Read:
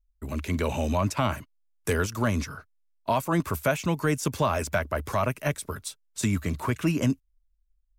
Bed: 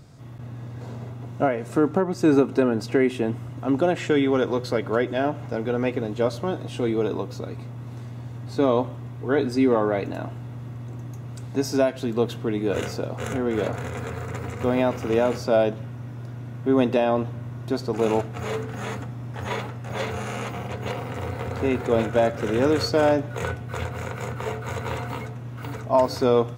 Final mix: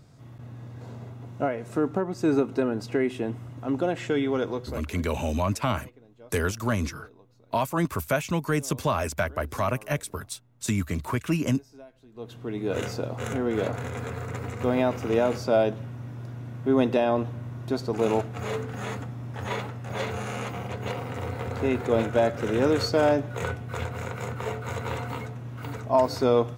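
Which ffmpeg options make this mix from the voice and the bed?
-filter_complex "[0:a]adelay=4450,volume=-0.5dB[a];[1:a]volume=20dB,afade=t=out:st=4.47:d=0.47:silence=0.0794328,afade=t=in:st=12.12:d=0.72:silence=0.0562341[b];[a][b]amix=inputs=2:normalize=0"

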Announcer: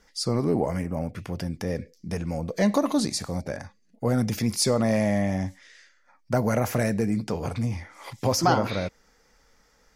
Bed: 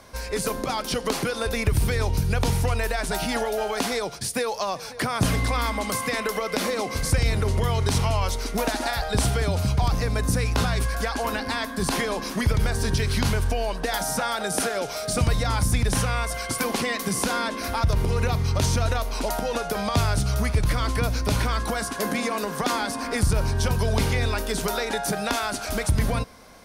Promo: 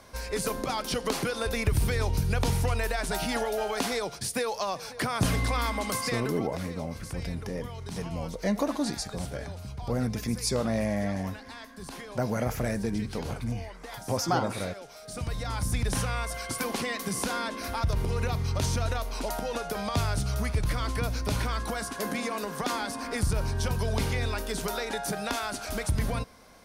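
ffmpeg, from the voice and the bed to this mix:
-filter_complex "[0:a]adelay=5850,volume=-5.5dB[a];[1:a]volume=7.5dB,afade=t=out:st=5.95:d=0.54:silence=0.223872,afade=t=in:st=15.01:d=0.85:silence=0.281838[b];[a][b]amix=inputs=2:normalize=0"

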